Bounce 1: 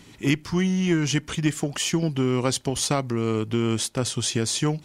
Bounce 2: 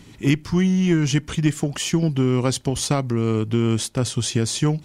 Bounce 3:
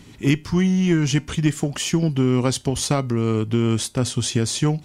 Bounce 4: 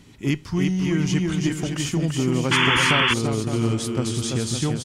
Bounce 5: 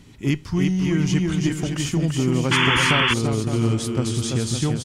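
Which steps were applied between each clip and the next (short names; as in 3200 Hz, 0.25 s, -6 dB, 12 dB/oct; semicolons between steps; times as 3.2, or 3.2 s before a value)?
low shelf 250 Hz +7 dB
resonator 83 Hz, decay 0.25 s, harmonics odd, mix 40%; gain +4 dB
bouncing-ball echo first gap 0.34 s, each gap 0.65×, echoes 5; painted sound noise, 2.51–3.14, 860–3500 Hz -15 dBFS; gain -4.5 dB
low shelf 120 Hz +5 dB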